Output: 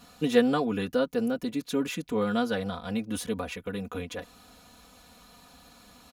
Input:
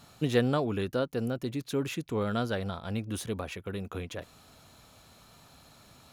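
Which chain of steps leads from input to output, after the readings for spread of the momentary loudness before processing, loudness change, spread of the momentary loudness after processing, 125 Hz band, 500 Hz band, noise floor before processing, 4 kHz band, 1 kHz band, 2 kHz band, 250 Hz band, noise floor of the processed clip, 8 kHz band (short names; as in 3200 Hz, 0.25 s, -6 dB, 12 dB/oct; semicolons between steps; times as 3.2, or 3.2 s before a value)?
11 LU, +3.0 dB, 12 LU, -5.0 dB, +3.0 dB, -57 dBFS, +2.5 dB, +3.0 dB, +3.0 dB, +4.5 dB, -55 dBFS, +2.5 dB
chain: comb 4.1 ms, depth 90%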